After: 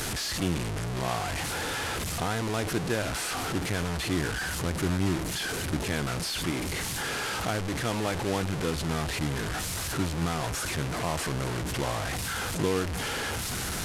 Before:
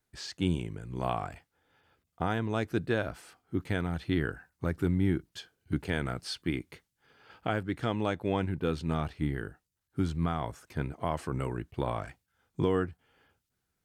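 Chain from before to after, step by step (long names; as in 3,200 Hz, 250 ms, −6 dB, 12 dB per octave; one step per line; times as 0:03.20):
linear delta modulator 64 kbit/s, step −25.5 dBFS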